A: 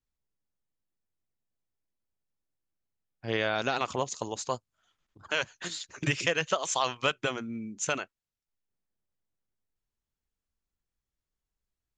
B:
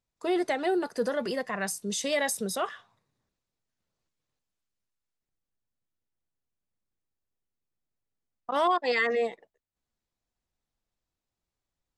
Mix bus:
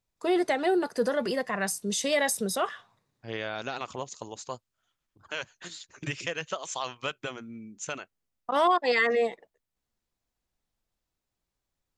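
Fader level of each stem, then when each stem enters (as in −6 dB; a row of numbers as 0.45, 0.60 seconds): −5.5, +2.0 decibels; 0.00, 0.00 seconds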